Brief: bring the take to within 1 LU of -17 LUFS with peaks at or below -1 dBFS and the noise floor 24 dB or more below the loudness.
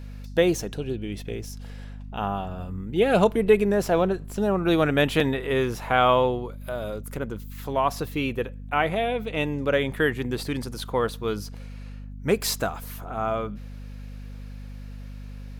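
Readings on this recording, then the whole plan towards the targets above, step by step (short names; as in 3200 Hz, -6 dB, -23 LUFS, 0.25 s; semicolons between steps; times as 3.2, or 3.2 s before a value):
hum 50 Hz; harmonics up to 250 Hz; hum level -36 dBFS; loudness -25.5 LUFS; peak -6.0 dBFS; loudness target -17.0 LUFS
-> notches 50/100/150/200/250 Hz; gain +8.5 dB; limiter -1 dBFS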